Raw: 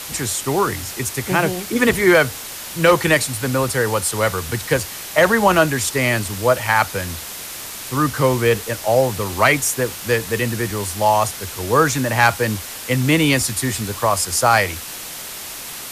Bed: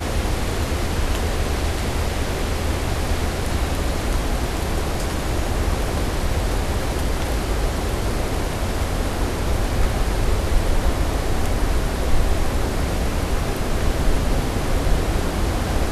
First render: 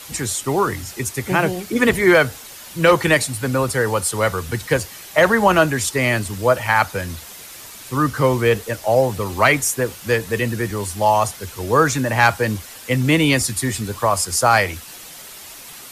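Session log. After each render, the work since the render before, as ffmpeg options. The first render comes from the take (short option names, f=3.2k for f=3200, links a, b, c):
-af "afftdn=nr=8:nf=-32"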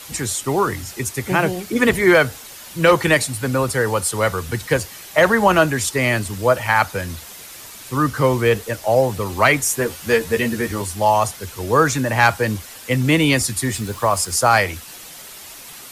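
-filter_complex "[0:a]asettb=1/sr,asplit=3[a][b][c];[a]atrim=end=9.694[d];[b]atrim=start=9.69:end=10.82,asetpts=PTS-STARTPTS,afade=t=in:d=0.004:c=qsin,afade=t=out:st=1.126:d=0.004:c=qsin,asplit=2[e][f];[f]adelay=13,volume=-2.5dB[g];[e][g]amix=inputs=2:normalize=0,atrim=end_sample=49833[h];[c]atrim=start=10.816[i];[d][h]acrossfade=d=0.004:c1=hsin:c2=qsin[j];[j][i]acrossfade=d=0.004:c1=qsin:c2=hsin,asettb=1/sr,asplit=3[k][l][m];[k]atrim=end=13.724[n];[l]atrim=start=13.72:end=14.4,asetpts=PTS-STARTPTS,afade=t=in:d=0.004:c=qsin,afade=t=out:st=0.676:d=0.004:c=qsin,acrusher=bits=6:mix=0:aa=0.5[o];[m]atrim=start=14.396[p];[n][o]acrossfade=d=0.004:c1=hsin:c2=qsin[q];[q][p]acrossfade=d=0.004:c1=qsin:c2=hsin"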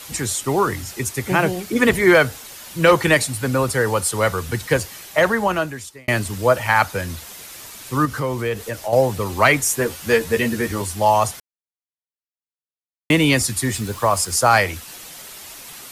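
-filter_complex "[0:a]asettb=1/sr,asplit=3[a][b][c];[a]atrim=end=8.054[d];[b]atrim=start=8.05:end=8.93,asetpts=PTS-STARTPTS,afade=t=in:d=0.004:c=qsin,afade=t=out:st=0.876:d=0.004:c=qsin,acompressor=threshold=-24dB:ratio=2:attack=3.2:release=140:knee=1:detection=peak[e];[c]atrim=start=8.926[f];[d][e]acrossfade=d=0.004:c1=hsin:c2=qsin[g];[g][f]acrossfade=d=0.004:c1=qsin:c2=hsin,asplit=4[h][i][j][k];[h]atrim=end=6.08,asetpts=PTS-STARTPTS,afade=t=out:st=4.96:d=1.12[l];[i]atrim=start=6.08:end=11.4,asetpts=PTS-STARTPTS,afade=t=in:d=0.004:c=hsin,afade=t=out:st=5.316:d=0.004:c=hsin[m];[j]atrim=start=11.4:end=13.1,asetpts=PTS-STARTPTS,volume=0[n];[k]atrim=start=13.1,asetpts=PTS-STARTPTS,afade=t=in:d=0.004:c=hsin[o];[l][m][n][o]concat=n=4:v=0:a=1"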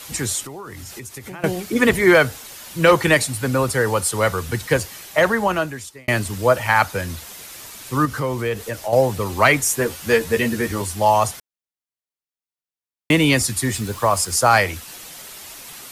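-filter_complex "[0:a]asettb=1/sr,asplit=3[a][b][c];[a]atrim=end=0.454[d];[b]atrim=start=0.45:end=1.44,asetpts=PTS-STARTPTS,afade=t=in:d=0.004:c=qsin,afade=t=out:st=0.986:d=0.004:c=qsin,acompressor=threshold=-31dB:ratio=10:attack=3.2:release=140:knee=1:detection=peak[e];[c]atrim=start=1.436[f];[d][e]acrossfade=d=0.004:c1=hsin:c2=qsin[g];[g][f]acrossfade=d=0.004:c1=qsin:c2=hsin"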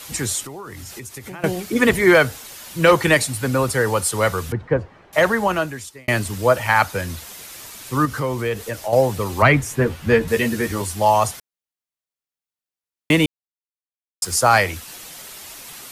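-filter_complex "[0:a]asettb=1/sr,asplit=3[a][b][c];[a]atrim=end=4.524[d];[b]atrim=start=4.52:end=5.13,asetpts=PTS-STARTPTS,afade=t=in:d=0.004:c=qsin,afade=t=out:st=0.606:d=0.004:c=qsin,lowpass=1.1k[e];[c]atrim=start=5.126[f];[d][e]acrossfade=d=0.004:c1=hsin:c2=qsin[g];[g][f]acrossfade=d=0.004:c1=qsin:c2=hsin,asettb=1/sr,asplit=3[h][i][j];[h]atrim=end=9.424[k];[i]atrim=start=9.42:end=10.28,asetpts=PTS-STARTPTS,afade=t=in:d=0.004:c=qsin,afade=t=out:st=0.856:d=0.004:c=qsin,bass=f=250:g=9,treble=f=4k:g=-12[l];[j]atrim=start=10.276[m];[k][l]acrossfade=d=0.004:c1=hsin:c2=qsin[n];[n][m]acrossfade=d=0.004:c1=qsin:c2=hsin,asplit=3[o][p][q];[o]atrim=end=13.26,asetpts=PTS-STARTPTS,afade=t=out:st=13.256:d=0.004:c=hsin[r];[p]atrim=start=13.26:end=14.22,asetpts=PTS-STARTPTS,volume=0[s];[q]atrim=start=14.22,asetpts=PTS-STARTPTS,afade=t=in:d=0.004:c=hsin[t];[r][s][t]concat=n=3:v=0:a=1"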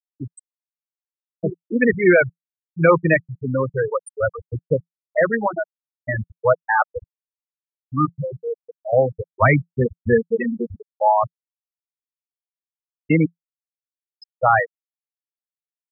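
-af "afftfilt=real='re*gte(hypot(re,im),0.501)':imag='im*gte(hypot(re,im),0.501)':win_size=1024:overlap=0.75,adynamicequalizer=threshold=0.0126:dfrequency=170:dqfactor=6.5:tfrequency=170:tqfactor=6.5:attack=5:release=100:ratio=0.375:range=2.5:mode=boostabove:tftype=bell"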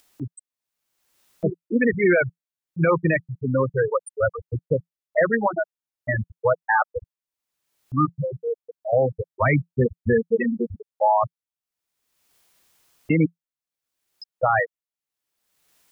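-af "alimiter=limit=-10dB:level=0:latency=1:release=59,acompressor=mode=upward:threshold=-36dB:ratio=2.5"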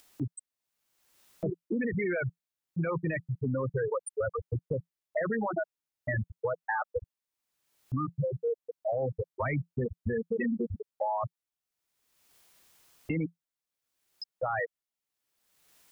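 -af "alimiter=limit=-20dB:level=0:latency=1:release=19,acompressor=threshold=-27dB:ratio=6"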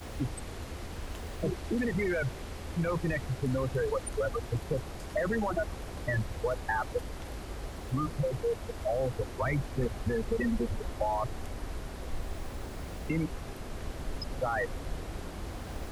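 -filter_complex "[1:a]volume=-18dB[a];[0:a][a]amix=inputs=2:normalize=0"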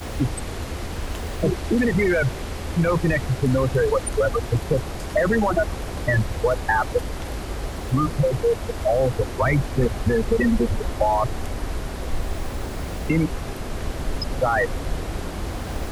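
-af "volume=10.5dB"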